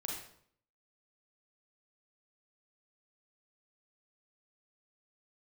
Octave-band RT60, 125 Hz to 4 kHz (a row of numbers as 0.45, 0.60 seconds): 0.70, 0.70, 0.65, 0.60, 0.55, 0.50 seconds